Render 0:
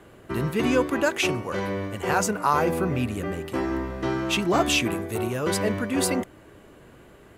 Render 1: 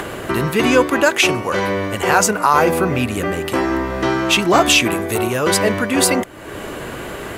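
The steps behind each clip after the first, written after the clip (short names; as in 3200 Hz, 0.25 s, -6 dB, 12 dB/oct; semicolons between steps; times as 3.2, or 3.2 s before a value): low shelf 380 Hz -7.5 dB; upward compressor, threshold -27 dBFS; maximiser +12.5 dB; gain -1 dB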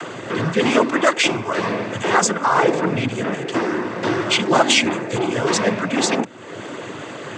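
noise vocoder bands 16; gain -2 dB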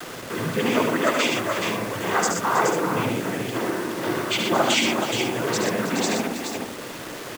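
on a send: tapped delay 70/74/121/320/423/489 ms -14.5/-6/-6/-12/-6/-12 dB; on the sum: bit-crush 5-bit; gain -7 dB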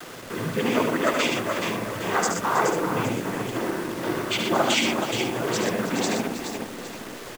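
in parallel at -8 dB: backlash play -22 dBFS; on the sum: echo 0.813 s -15.5 dB; gain -4 dB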